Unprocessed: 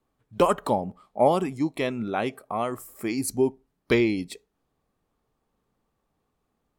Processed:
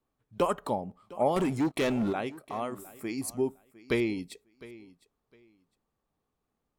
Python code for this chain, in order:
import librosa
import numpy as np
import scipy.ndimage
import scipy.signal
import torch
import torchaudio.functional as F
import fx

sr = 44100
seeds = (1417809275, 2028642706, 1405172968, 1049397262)

y = fx.leveller(x, sr, passes=3, at=(1.36, 2.13))
y = fx.echo_feedback(y, sr, ms=707, feedback_pct=21, wet_db=-19.5)
y = y * librosa.db_to_amplitude(-6.5)